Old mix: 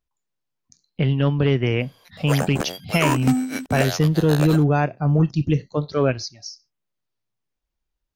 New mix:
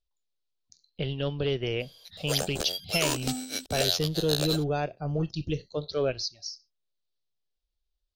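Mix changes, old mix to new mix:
speech: add low-pass 2.9 kHz 6 dB/octave; master: add graphic EQ 125/250/1000/2000/4000 Hz -11/-12/-11/-10/+10 dB

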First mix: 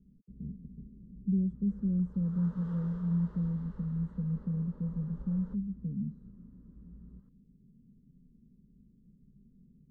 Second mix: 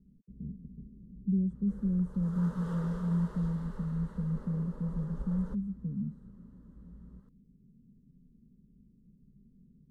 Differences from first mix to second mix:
background +7.5 dB; master: remove distance through air 110 m

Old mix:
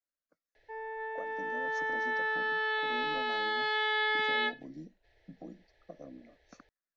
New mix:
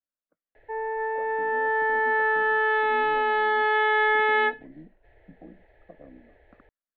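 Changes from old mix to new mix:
background +11.5 dB; master: add Gaussian low-pass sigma 3.8 samples

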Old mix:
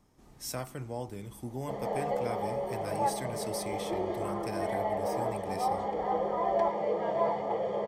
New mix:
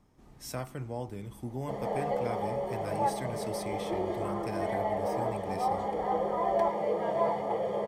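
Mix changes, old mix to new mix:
background: remove distance through air 100 m; master: add tone controls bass +2 dB, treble -5 dB

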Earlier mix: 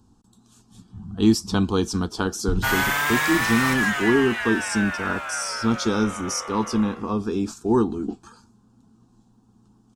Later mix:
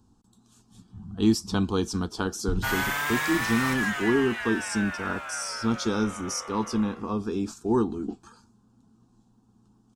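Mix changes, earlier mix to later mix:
speech -4.0 dB; background -5.5 dB

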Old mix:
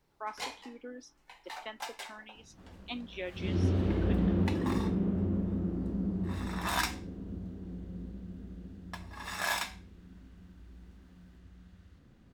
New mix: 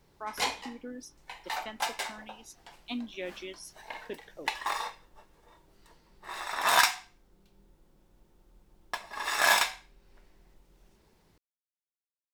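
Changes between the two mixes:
speech: remove band-pass 300–4500 Hz; first sound +9.0 dB; second sound: muted

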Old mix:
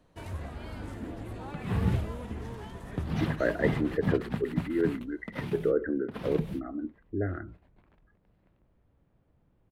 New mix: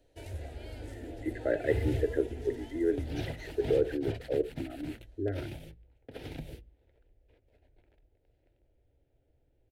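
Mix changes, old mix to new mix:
speech: entry -1.95 s; master: add static phaser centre 460 Hz, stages 4

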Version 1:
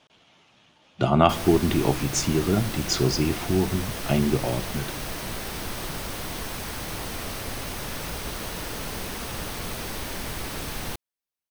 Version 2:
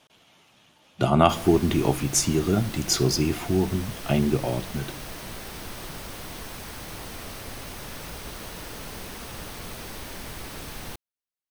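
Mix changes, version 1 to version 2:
speech: remove low-pass 6 kHz 12 dB/octave; background -5.0 dB

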